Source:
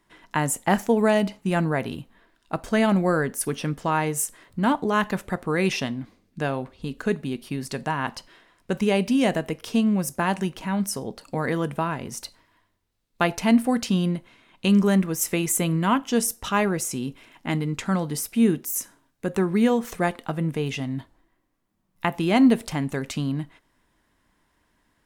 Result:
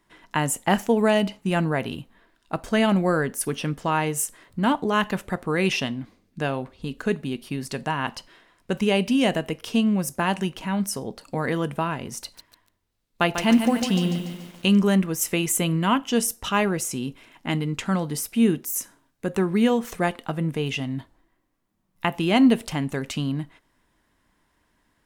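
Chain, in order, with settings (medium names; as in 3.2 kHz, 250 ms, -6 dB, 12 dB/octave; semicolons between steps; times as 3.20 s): dynamic bell 2.9 kHz, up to +6 dB, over -49 dBFS, Q 4.8; 12.21–14.78 s: bit-crushed delay 144 ms, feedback 55%, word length 7-bit, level -7.5 dB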